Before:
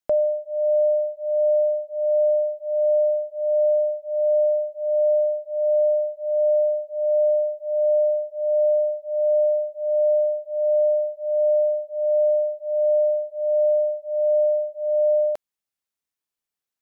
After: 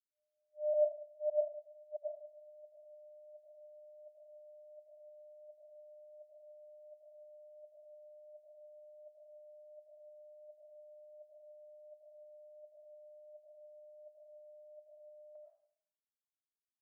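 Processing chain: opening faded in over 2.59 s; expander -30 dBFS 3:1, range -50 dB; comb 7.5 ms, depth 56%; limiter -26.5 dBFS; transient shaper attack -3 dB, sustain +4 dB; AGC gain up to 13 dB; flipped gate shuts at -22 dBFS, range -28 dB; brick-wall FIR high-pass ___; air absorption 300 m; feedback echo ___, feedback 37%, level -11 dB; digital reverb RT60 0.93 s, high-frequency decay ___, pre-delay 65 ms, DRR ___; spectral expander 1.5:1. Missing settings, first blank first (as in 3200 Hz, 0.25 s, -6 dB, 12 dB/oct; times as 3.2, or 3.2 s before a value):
560 Hz, 72 ms, 0.9×, -0.5 dB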